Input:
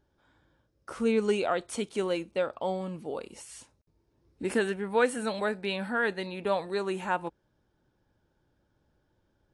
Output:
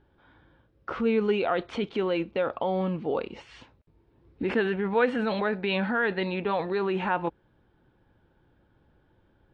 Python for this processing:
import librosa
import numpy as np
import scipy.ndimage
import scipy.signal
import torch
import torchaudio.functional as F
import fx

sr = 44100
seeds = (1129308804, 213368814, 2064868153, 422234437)

p1 = scipy.signal.sosfilt(scipy.signal.butter(4, 3500.0, 'lowpass', fs=sr, output='sos'), x)
p2 = fx.notch(p1, sr, hz=600.0, q=15.0)
p3 = fx.over_compress(p2, sr, threshold_db=-34.0, ratio=-0.5)
p4 = p2 + (p3 * 10.0 ** (-3.0 / 20.0))
y = p4 * 10.0 ** (1.0 / 20.0)